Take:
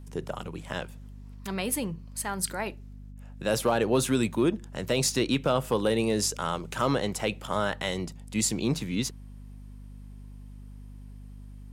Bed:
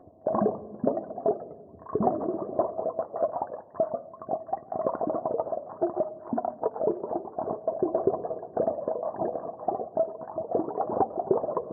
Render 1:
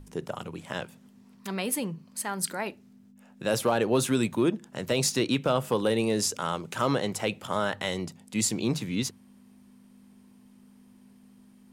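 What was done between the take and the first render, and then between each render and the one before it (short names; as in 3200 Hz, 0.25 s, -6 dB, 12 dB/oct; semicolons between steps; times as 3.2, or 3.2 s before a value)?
notches 50/100/150 Hz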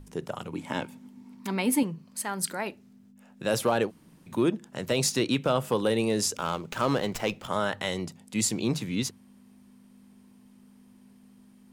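0.51–1.83 small resonant body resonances 270/890/2200 Hz, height 12 dB; 3.88–4.29 room tone, crossfade 0.06 s; 6.37–7.48 running maximum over 3 samples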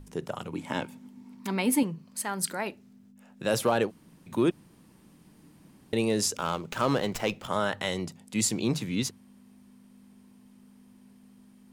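4.51–5.93 room tone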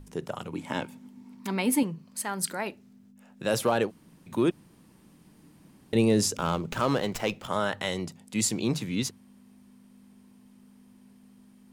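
5.95–6.8 low shelf 360 Hz +8 dB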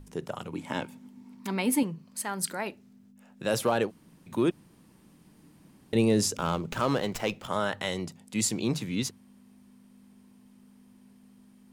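gain -1 dB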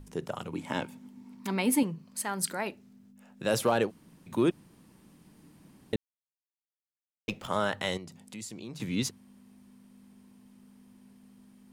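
5.96–7.28 mute; 7.97–8.8 compressor 3:1, threshold -43 dBFS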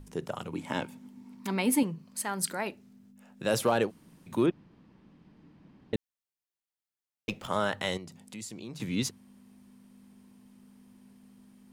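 4.46–5.94 air absorption 220 m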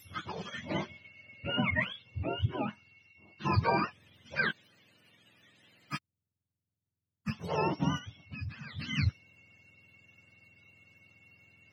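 spectrum mirrored in octaves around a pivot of 740 Hz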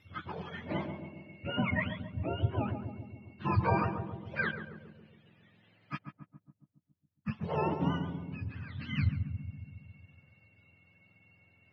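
air absorption 340 m; darkening echo 0.138 s, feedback 66%, low-pass 830 Hz, level -5.5 dB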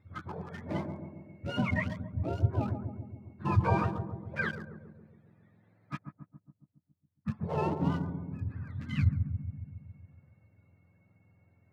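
Wiener smoothing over 15 samples; low shelf 85 Hz +8 dB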